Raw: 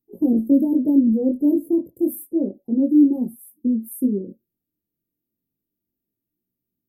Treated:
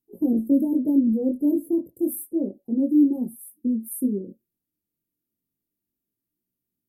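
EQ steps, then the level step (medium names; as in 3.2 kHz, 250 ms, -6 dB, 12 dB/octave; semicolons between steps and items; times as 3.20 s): peaking EQ 9.7 kHz +7.5 dB 0.98 oct; -3.5 dB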